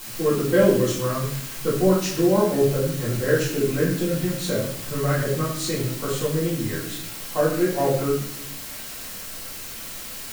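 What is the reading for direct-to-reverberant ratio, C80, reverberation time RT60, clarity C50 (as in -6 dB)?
-8.0 dB, 7.0 dB, 0.75 s, 4.0 dB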